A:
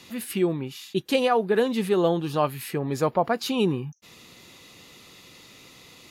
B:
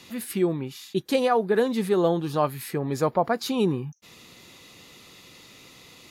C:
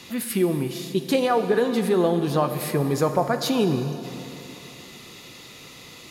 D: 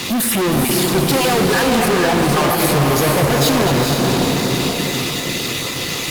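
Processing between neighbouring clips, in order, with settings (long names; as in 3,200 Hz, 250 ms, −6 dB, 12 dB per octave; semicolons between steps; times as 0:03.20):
dynamic equaliser 2,800 Hz, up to −7 dB, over −51 dBFS, Q 3.5
downward compressor 2.5 to 1, threshold −24 dBFS, peak gain reduction 6 dB; dense smooth reverb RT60 3.2 s, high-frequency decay 0.95×, DRR 7.5 dB; level +5 dB
time-frequency cells dropped at random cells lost 20%; fuzz pedal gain 40 dB, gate −49 dBFS; feedback delay with all-pass diffusion 455 ms, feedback 41%, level −3 dB; level −2.5 dB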